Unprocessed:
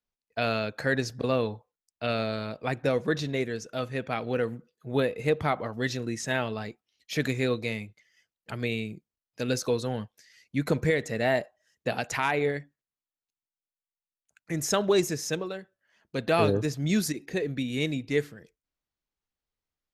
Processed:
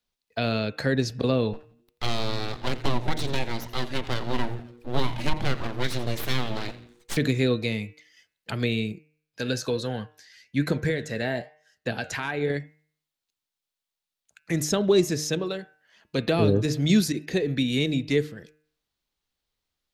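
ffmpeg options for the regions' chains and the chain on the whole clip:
ffmpeg -i in.wav -filter_complex "[0:a]asettb=1/sr,asplit=3[link_01][link_02][link_03];[link_01]atrim=end=1.534[link_04];[link_02]atrim=start=1.53:end=7.17,asetpts=PTS-STARTPTS,afade=type=in:duration=0.004:curve=qsin,afade=type=out:start_time=5.636:duration=0.004:curve=qsin,aeval=exprs='abs(val(0))':channel_layout=same,asplit=5[link_05][link_06][link_07][link_08][link_09];[link_06]adelay=85,afreqshift=-120,volume=-17dB[link_10];[link_07]adelay=170,afreqshift=-240,volume=-23.9dB[link_11];[link_08]adelay=255,afreqshift=-360,volume=-30.9dB[link_12];[link_09]adelay=340,afreqshift=-480,volume=-37.8dB[link_13];[link_05][link_10][link_11][link_12][link_13]amix=inputs=5:normalize=0,atrim=end_sample=248724[link_14];[link_03]atrim=start=7.166[link_15];[link_04][link_14]acrossfade=duration=0.004:curve1=hsin:curve2=qsin[link_16];[link_16][link_15]acrossfade=duration=0.004:curve1=qsin:curve2=hsin,asettb=1/sr,asplit=3[link_17][link_18][link_19];[link_17]atrim=end=8.924[link_20];[link_18]atrim=start=8.92:end=12.5,asetpts=PTS-STARTPTS,afade=type=in:duration=0.004:curve=qsin,afade=type=out:start_time=3.576:duration=0.004:curve=qsin,equalizer=frequency=1600:width=7.4:gain=10,flanger=delay=5.2:depth=6.1:regen=79:speed=1.1:shape=triangular[link_21];[link_19]atrim=start=12.496[link_22];[link_20][link_21]acrossfade=duration=0.004:curve1=hsin:curve2=qsin[link_23];[link_23][link_22]acrossfade=duration=0.004:curve1=qsin:curve2=hsin,acrossover=split=440[link_24][link_25];[link_25]acompressor=threshold=-38dB:ratio=3[link_26];[link_24][link_26]amix=inputs=2:normalize=0,equalizer=frequency=3800:width=1.5:gain=6.5,bandreject=frequency=152.6:width_type=h:width=4,bandreject=frequency=305.2:width_type=h:width=4,bandreject=frequency=457.8:width_type=h:width=4,bandreject=frequency=610.4:width_type=h:width=4,bandreject=frequency=763:width_type=h:width=4,bandreject=frequency=915.6:width_type=h:width=4,bandreject=frequency=1068.2:width_type=h:width=4,bandreject=frequency=1220.8:width_type=h:width=4,bandreject=frequency=1373.4:width_type=h:width=4,bandreject=frequency=1526:width_type=h:width=4,bandreject=frequency=1678.6:width_type=h:width=4,bandreject=frequency=1831.2:width_type=h:width=4,bandreject=frequency=1983.8:width_type=h:width=4,bandreject=frequency=2136.4:width_type=h:width=4,bandreject=frequency=2289:width_type=h:width=4,bandreject=frequency=2441.6:width_type=h:width=4,bandreject=frequency=2594.2:width_type=h:width=4,bandreject=frequency=2746.8:width_type=h:width=4,bandreject=frequency=2899.4:width_type=h:width=4,volume=6dB" out.wav

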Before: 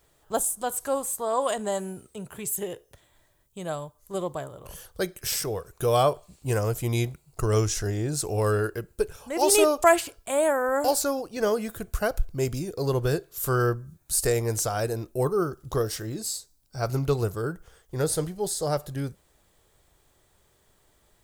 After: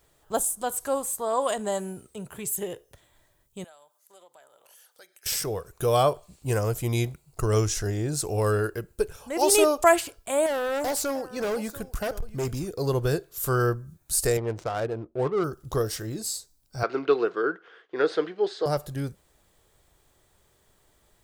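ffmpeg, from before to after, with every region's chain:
ffmpeg -i in.wav -filter_complex "[0:a]asettb=1/sr,asplit=3[link_01][link_02][link_03];[link_01]atrim=end=3.644[link_04];[link_02]atrim=start=3.64:end=5.26,asetpts=PTS-STARTPTS,afade=type=in:duration=0.004:curve=qsin,afade=type=out:start_time=1.616:duration=0.004:curve=qsin,highpass=840,acompressor=threshold=-56dB:ratio=2.5:attack=3.2:release=140:knee=1:detection=peak,bandreject=frequency=1100:width=5.5[link_05];[link_03]atrim=start=5.256[link_06];[link_04][link_05]acrossfade=duration=0.004:curve1=hsin:curve2=qsin[link_07];[link_07][link_06]acrossfade=duration=0.004:curve1=qsin:curve2=hsin,asettb=1/sr,asplit=3[link_08][link_09][link_10];[link_08]atrim=end=10.464[link_11];[link_09]atrim=start=10.46:end=12.7,asetpts=PTS-STARTPTS,afade=type=in:duration=0.004:curve=qsin,afade=type=out:start_time=2.236:duration=0.004:curve=qsin,aecho=1:1:688:0.106,atrim=end_sample=98784,asoftclip=type=hard:threshold=-24.5dB[link_12];[link_10]atrim=start=12.696[link_13];[link_11][link_12]acrossfade=duration=0.004:curve1=hsin:curve2=qsin[link_14];[link_14][link_13]acrossfade=duration=0.004:curve1=qsin:curve2=hsin,asettb=1/sr,asplit=3[link_15][link_16][link_17];[link_15]atrim=end=14.374[link_18];[link_16]atrim=start=14.37:end=15.44,asetpts=PTS-STARTPTS,afade=type=in:duration=0.004:curve=qsin,afade=type=out:start_time=1.066:duration=0.004:curve=qsin,highpass=frequency=150:poles=1,highshelf=frequency=4500:gain=-7,adynamicsmooth=sensitivity=5:basefreq=660[link_19];[link_17]atrim=start=15.436[link_20];[link_18][link_19]acrossfade=duration=0.004:curve1=hsin:curve2=qsin[link_21];[link_21][link_20]acrossfade=duration=0.004:curve1=qsin:curve2=hsin,asettb=1/sr,asplit=3[link_22][link_23][link_24];[link_22]atrim=end=16.834[link_25];[link_23]atrim=start=16.83:end=18.66,asetpts=PTS-STARTPTS,afade=type=in:duration=0.004:curve=qsin,afade=type=out:start_time=1.826:duration=0.004:curve=qsin,acontrast=81,highpass=frequency=320:width=0.5412,highpass=frequency=320:width=1.3066,equalizer=frequency=580:width_type=q:width=4:gain=-8,equalizer=frequency=850:width_type=q:width=4:gain=-7,equalizer=frequency=1600:width_type=q:width=4:gain=4,lowpass=frequency=3400:width=0.5412,lowpass=frequency=3400:width=1.3066[link_26];[link_24]atrim=start=18.656[link_27];[link_25][link_26]acrossfade=duration=0.004:curve1=hsin:curve2=qsin[link_28];[link_28][link_27]acrossfade=duration=0.004:curve1=qsin:curve2=hsin" out.wav

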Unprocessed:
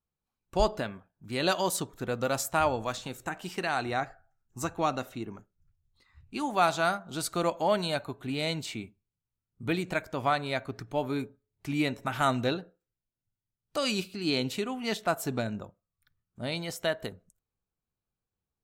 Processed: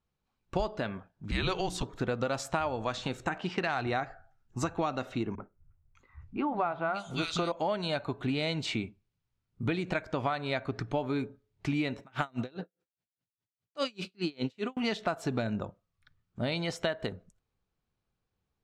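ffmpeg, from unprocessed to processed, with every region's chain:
ffmpeg -i in.wav -filter_complex "[0:a]asettb=1/sr,asplit=3[link_01][link_02][link_03];[link_01]atrim=end=1.314[link_04];[link_02]atrim=start=1.31:end=1.83,asetpts=PTS-STARTPTS,afade=type=in:duration=0.004:curve=qsin,afade=type=out:start_time=0.516:duration=0.004:curve=qsin,afreqshift=-200,bandreject=frequency=60:width_type=h:width=6,bandreject=frequency=120:width_type=h:width=6,bandreject=frequency=180:width_type=h:width=6,bandreject=frequency=240:width_type=h:width=6,bandreject=frequency=300:width_type=h:width=6,bandreject=frequency=360:width_type=h:width=6,bandreject=frequency=420:width_type=h:width=6[link_05];[link_03]atrim=start=1.826[link_06];[link_04][link_05]acrossfade=duration=0.004:curve1=hsin:curve2=qsin[link_07];[link_07][link_06]acrossfade=duration=0.004:curve1=qsin:curve2=hsin,asettb=1/sr,asplit=3[link_08][link_09][link_10];[link_08]atrim=end=3.384[link_11];[link_09]atrim=start=3.38:end=3.87,asetpts=PTS-STARTPTS,afade=type=in:duration=0.004:curve=qsin,afade=type=out:start_time=0.486:duration=0.004:curve=qsin,highpass=63,asubboost=boost=11.5:cutoff=160,adynamicsmooth=sensitivity=5.5:basefreq=4200[link_12];[link_10]atrim=start=3.866[link_13];[link_11][link_12]acrossfade=duration=0.004:curve1=hsin:curve2=qsin[link_14];[link_14][link_13]acrossfade=duration=0.004:curve1=qsin:curve2=hsin,asettb=1/sr,asplit=3[link_15][link_16][link_17];[link_15]atrim=end=5.354[link_18];[link_16]atrim=start=5.35:end=7.52,asetpts=PTS-STARTPTS,afade=type=in:duration=0.004:curve=qsin,afade=type=out:start_time=2.166:duration=0.004:curve=qsin,bandreject=frequency=1700:width=10,acrossover=split=190|2200[link_19][link_20][link_21];[link_20]adelay=30[link_22];[link_21]adelay=600[link_23];[link_19][link_22][link_23]amix=inputs=3:normalize=0,atrim=end_sample=95697[link_24];[link_17]atrim=start=7.516[link_25];[link_18][link_24]acrossfade=duration=0.004:curve1=hsin:curve2=qsin[link_26];[link_26][link_25]acrossfade=duration=0.004:curve1=qsin:curve2=hsin,asettb=1/sr,asplit=3[link_27][link_28][link_29];[link_27]atrim=end=12.004[link_30];[link_28]atrim=start=12:end=14.77,asetpts=PTS-STARTPTS,afade=type=in:duration=0.004:curve=qsin,afade=type=out:start_time=2.766:duration=0.004:curve=qsin,highpass=110,aeval=exprs='val(0)*pow(10,-38*(0.5-0.5*cos(2*PI*4.9*n/s))/20)':channel_layout=same[link_31];[link_29]atrim=start=14.766[link_32];[link_30][link_31]acrossfade=duration=0.004:curve1=hsin:curve2=qsin[link_33];[link_33][link_32]acrossfade=duration=0.004:curve1=qsin:curve2=hsin,lowpass=4700,acompressor=threshold=-34dB:ratio=10,volume=7dB" out.wav

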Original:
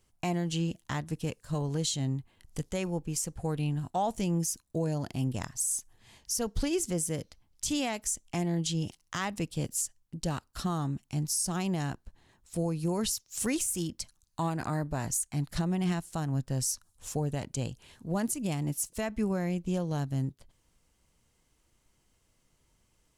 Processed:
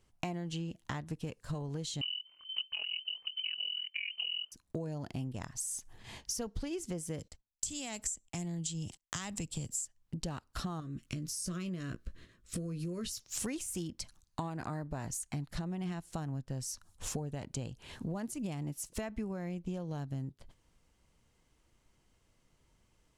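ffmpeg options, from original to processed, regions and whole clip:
ffmpeg -i in.wav -filter_complex "[0:a]asettb=1/sr,asplit=3[link_01][link_02][link_03];[link_01]atrim=end=2.014[link_04];[link_02]atrim=start=2.01:end=4.52,asetpts=PTS-STARTPTS,afade=type=in:duration=0.004:curve=qsin,afade=type=out:start_time=2.506:duration=0.004:curve=qsin,lowshelf=frequency=400:gain=12,tremolo=f=42:d=0.919,lowpass=frequency=2600:width_type=q:width=0.5098,lowpass=frequency=2600:width_type=q:width=0.6013,lowpass=frequency=2600:width_type=q:width=0.9,lowpass=frequency=2600:width_type=q:width=2.563,afreqshift=-3100[link_05];[link_03]atrim=start=4.516[link_06];[link_04][link_05]acrossfade=duration=0.004:curve1=hsin:curve2=qsin[link_07];[link_07][link_06]acrossfade=duration=0.004:curve1=qsin:curve2=hsin,asettb=1/sr,asplit=3[link_08][link_09][link_10];[link_08]atrim=end=7.194[link_11];[link_09]atrim=start=7.19:end=9.85,asetpts=PTS-STARTPTS,afade=type=in:duration=0.004:curve=qsin,afade=type=out:start_time=2.656:duration=0.004:curve=qsin,equalizer=frequency=7600:width_type=o:width=0.29:gain=14.5,acrossover=split=160|3000[link_12][link_13][link_14];[link_13]acompressor=threshold=-48dB:ratio=2:attack=3.2:release=140:knee=2.83:detection=peak[link_15];[link_12][link_15][link_14]amix=inputs=3:normalize=0,agate=range=-30dB:threshold=-57dB:ratio=16:release=100:detection=peak[link_16];[link_10]atrim=start=9.846[link_17];[link_11][link_16]acrossfade=duration=0.004:curve1=hsin:curve2=qsin[link_18];[link_18][link_17]acrossfade=duration=0.004:curve1=qsin:curve2=hsin,asettb=1/sr,asplit=3[link_19][link_20][link_21];[link_19]atrim=end=10.804[link_22];[link_20]atrim=start=10.8:end=13.2,asetpts=PTS-STARTPTS,afade=type=in:duration=0.004:curve=qsin,afade=type=out:start_time=2.396:duration=0.004:curve=qsin,acompressor=threshold=-36dB:ratio=3:attack=3.2:release=140:knee=1:detection=peak,asuperstop=centerf=820:order=4:qfactor=1.6,asplit=2[link_23][link_24];[link_24]adelay=17,volume=-9dB[link_25];[link_23][link_25]amix=inputs=2:normalize=0,atrim=end_sample=105840[link_26];[link_21]atrim=start=13.196[link_27];[link_22][link_26]acrossfade=duration=0.004:curve1=hsin:curve2=qsin[link_28];[link_28][link_27]acrossfade=duration=0.004:curve1=qsin:curve2=hsin,agate=range=-9dB:threshold=-58dB:ratio=16:detection=peak,highshelf=frequency=6900:gain=-9.5,acompressor=threshold=-45dB:ratio=10,volume=9.5dB" out.wav

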